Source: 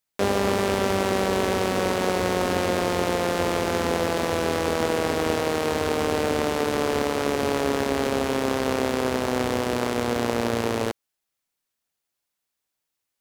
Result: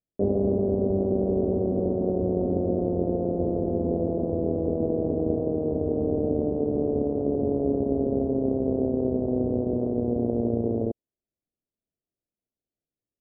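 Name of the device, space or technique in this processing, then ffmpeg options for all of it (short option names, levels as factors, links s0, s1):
under water: -af "lowpass=f=420:w=0.5412,lowpass=f=420:w=1.3066,equalizer=f=670:t=o:w=0.43:g=10,volume=1.26"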